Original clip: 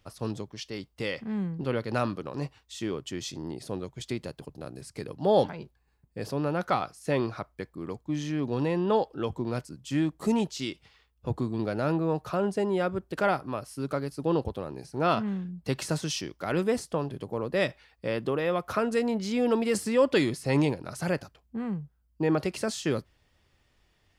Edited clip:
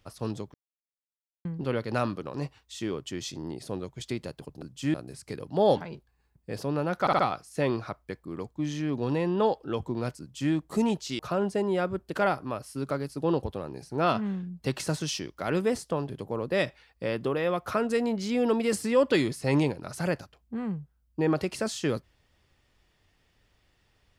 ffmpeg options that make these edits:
-filter_complex "[0:a]asplit=9[a][b][c][d][e][f][g][h][i];[a]atrim=end=0.54,asetpts=PTS-STARTPTS,afade=t=out:st=0.536:d=0.004:c=hsin[j];[b]atrim=start=0.54:end=1.45,asetpts=PTS-STARTPTS,volume=0[k];[c]atrim=start=1.45:end=4.622,asetpts=PTS-STARTPTS,afade=t=in:d=0.004:c=hsin[l];[d]atrim=start=9.698:end=10.022[m];[e]atrim=start=4.618:end=6.752[n];[f]atrim=start=6.688:end=6.752[o];[g]atrim=start=6.688:end=6.752[p];[h]atrim=start=6.688:end=10.692[q];[i]atrim=start=12.208[r];[j][k][l]concat=n=3:v=0:a=1[s];[s][m]acrossfade=d=0.004:c1=hsin:c2=hsin[t];[t][n]acrossfade=d=0.004:c1=hsin:c2=hsin[u];[u][o]acrossfade=d=0.004:c1=hsin:c2=hsin[v];[v][p]acrossfade=d=0.004:c1=hsin:c2=hsin[w];[w][q]acrossfade=d=0.004:c1=hsin:c2=hsin[x];[x][r]acrossfade=d=0.004:c1=hsin:c2=hsin"

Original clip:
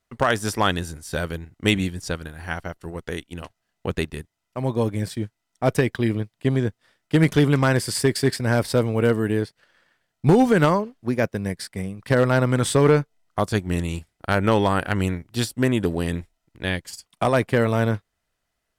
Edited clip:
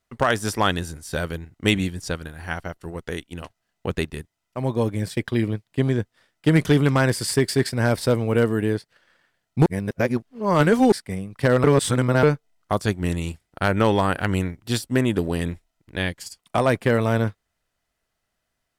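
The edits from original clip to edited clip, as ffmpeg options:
-filter_complex "[0:a]asplit=6[a][b][c][d][e][f];[a]atrim=end=5.172[g];[b]atrim=start=5.838:end=10.332[h];[c]atrim=start=10.328:end=11.592,asetpts=PTS-STARTPTS,areverse[i];[d]atrim=start=11.588:end=12.312[j];[e]atrim=start=12.308:end=12.902,asetpts=PTS-STARTPTS,areverse[k];[f]atrim=start=12.898[l];[g][h]acrossfade=d=0.004:c1=hsin:c2=hsin[m];[m][i]acrossfade=d=0.004:c1=hsin:c2=hsin[n];[n][j]acrossfade=d=0.004:c1=hsin:c2=hsin[o];[o][k]acrossfade=d=0.004:c1=hsin:c2=hsin[p];[p][l]acrossfade=d=0.004:c1=hsin:c2=hsin"

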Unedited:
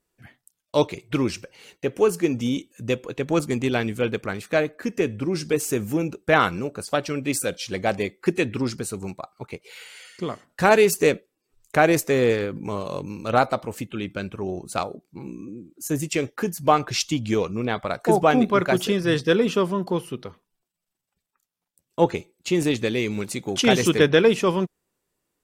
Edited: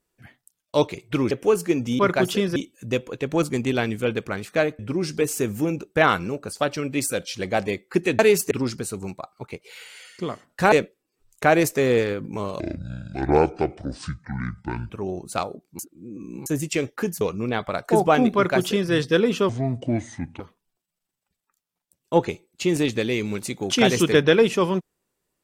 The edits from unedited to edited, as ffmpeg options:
-filter_complex "[0:a]asplit=15[a][b][c][d][e][f][g][h][i][j][k][l][m][n][o];[a]atrim=end=1.312[p];[b]atrim=start=1.848:end=2.532[q];[c]atrim=start=18.508:end=19.082[r];[d]atrim=start=2.528:end=4.762[s];[e]atrim=start=5.108:end=8.512[t];[f]atrim=start=10.718:end=11.042[u];[g]atrim=start=8.508:end=10.722[v];[h]atrim=start=11.038:end=12.924[w];[i]atrim=start=12.92:end=14.3,asetpts=PTS-STARTPTS,asetrate=26460,aresample=44100[x];[j]atrim=start=14.296:end=15.192[y];[k]atrim=start=15.188:end=15.862,asetpts=PTS-STARTPTS,areverse[z];[l]atrim=start=15.858:end=16.612[aa];[m]atrim=start=17.368:end=19.654[ab];[n]atrim=start=19.65:end=20.26,asetpts=PTS-STARTPTS,asetrate=29547,aresample=44100[ac];[o]atrim=start=20.256[ad];[p][q]acrossfade=d=0.004:c1=hsin:c2=hsin[ae];[ae][r]acrossfade=d=0.004:c1=hsin:c2=hsin[af];[af][s]acrossfade=d=0.004:c1=hsin:c2=hsin[ag];[ag][t]acrossfade=d=0.004:c1=hsin:c2=hsin[ah];[ah][u]acrossfade=d=0.004:c1=hsin:c2=hsin[ai];[ai][v]acrossfade=d=0.004:c1=hsin:c2=hsin[aj];[aj][w]acrossfade=d=0.004:c1=hsin:c2=hsin[ak];[ak][x]acrossfade=d=0.004:c1=hsin:c2=hsin[al];[al][y]acrossfade=d=0.004:c1=hsin:c2=hsin[am];[am][z]acrossfade=d=0.004:c1=hsin:c2=hsin[an];[an][aa]acrossfade=d=0.004:c1=hsin:c2=hsin[ao];[ao][ab]acrossfade=d=0.004:c1=hsin:c2=hsin[ap];[ap][ac]acrossfade=d=0.004:c1=hsin:c2=hsin[aq];[aq][ad]acrossfade=d=0.004:c1=hsin:c2=hsin"

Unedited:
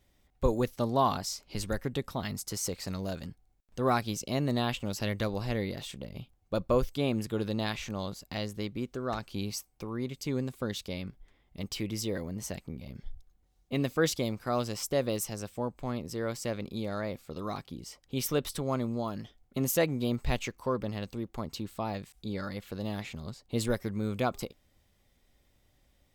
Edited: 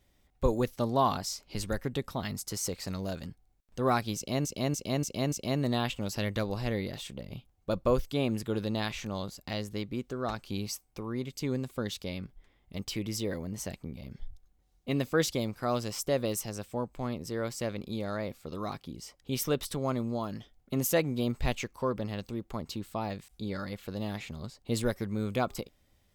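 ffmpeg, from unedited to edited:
-filter_complex "[0:a]asplit=5[a][b][c][d][e];[a]atrim=end=4.452[f];[b]atrim=start=4.158:end=4.452[g];[c]atrim=start=4.158:end=4.452[h];[d]atrim=start=4.158:end=4.452[i];[e]atrim=start=4.158[j];[f][g]acrossfade=d=0.004:c1=hsin:c2=hsin[k];[k][h]acrossfade=d=0.004:c1=hsin:c2=hsin[l];[l][i]acrossfade=d=0.004:c1=hsin:c2=hsin[m];[m][j]acrossfade=d=0.004:c1=hsin:c2=hsin"

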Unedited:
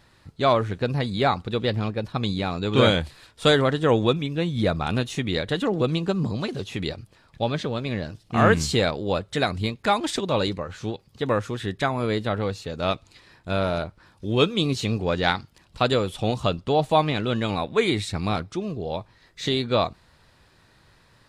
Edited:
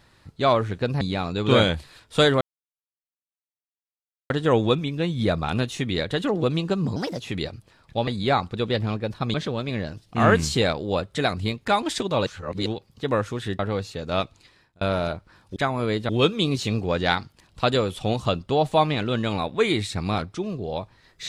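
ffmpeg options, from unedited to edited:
-filter_complex "[0:a]asplit=13[a][b][c][d][e][f][g][h][i][j][k][l][m];[a]atrim=end=1.012[n];[b]atrim=start=2.278:end=3.68,asetpts=PTS-STARTPTS,afade=t=out:st=1.398:d=0.004:c=hsin,apad=pad_dur=1.89[o];[c]atrim=start=3.68:end=6.344,asetpts=PTS-STARTPTS,afade=t=in:d=0.004:c=hsin[p];[d]atrim=start=6.34:end=6.65,asetpts=PTS-STARTPTS,asetrate=56448,aresample=44100,atrim=end_sample=10680,asetpts=PTS-STARTPTS[q];[e]atrim=start=6.646:end=7.522[r];[f]atrim=start=1.008:end=2.282[s];[g]atrim=start=7.518:end=10.442[t];[h]atrim=start=10.438:end=10.842,asetpts=PTS-STARTPTS,areverse[u];[i]atrim=start=10.838:end=11.772[v];[j]atrim=start=12.298:end=13.52,asetpts=PTS-STARTPTS,afade=t=out:st=0.532:d=0.69:c=qsin[w];[k]atrim=start=13.52:end=14.272,asetpts=PTS-STARTPTS,afade=t=in:d=0.004:c=hsin[x];[l]atrim=start=11.768:end=12.302[y];[m]atrim=start=14.268[z];[o][p]concat=n=2:v=0:a=1[aa];[n][aa]acrossfade=d=0.004:c1=hsin:c2=hsin[ab];[ab][q]acrossfade=d=0.004:c1=hsin:c2=hsin[ac];[ac][r]acrossfade=d=0.004:c1=hsin:c2=hsin[ad];[ad][s]acrossfade=d=0.004:c1=hsin:c2=hsin[ae];[ae][t]acrossfade=d=0.004:c1=hsin:c2=hsin[af];[af][u]acrossfade=d=0.004:c1=hsin:c2=hsin[ag];[ag][v]acrossfade=d=0.004:c1=hsin:c2=hsin[ah];[w][x]concat=n=2:v=0:a=1[ai];[ah][ai]acrossfade=d=0.004:c1=hsin:c2=hsin[aj];[aj][y]acrossfade=d=0.004:c1=hsin:c2=hsin[ak];[ak][z]acrossfade=d=0.004:c1=hsin:c2=hsin"

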